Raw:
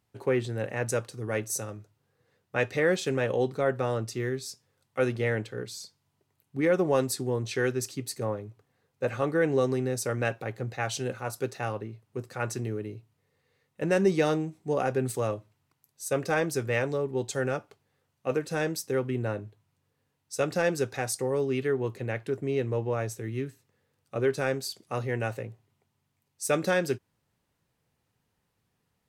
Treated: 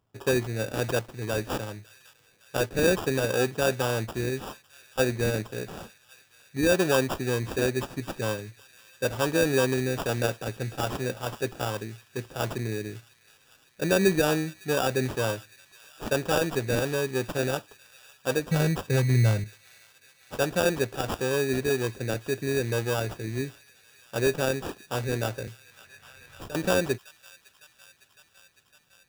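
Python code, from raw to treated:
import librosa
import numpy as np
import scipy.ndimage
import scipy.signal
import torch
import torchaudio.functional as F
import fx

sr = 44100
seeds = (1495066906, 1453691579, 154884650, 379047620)

y = fx.low_shelf_res(x, sr, hz=210.0, db=9.5, q=1.5, at=(18.51, 19.44))
y = fx.sample_hold(y, sr, seeds[0], rate_hz=2100.0, jitter_pct=0)
y = fx.echo_wet_highpass(y, sr, ms=557, feedback_pct=72, hz=1900.0, wet_db=-19.0)
y = fx.band_squash(y, sr, depth_pct=100, at=(25.47, 26.55))
y = y * librosa.db_to_amplitude(1.5)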